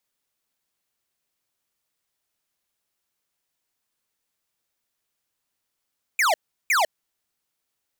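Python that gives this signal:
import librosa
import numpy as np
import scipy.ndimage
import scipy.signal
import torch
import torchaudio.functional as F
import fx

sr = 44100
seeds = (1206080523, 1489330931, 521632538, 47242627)

y = fx.laser_zaps(sr, level_db=-19.5, start_hz=2500.0, end_hz=580.0, length_s=0.15, wave='square', shots=2, gap_s=0.36)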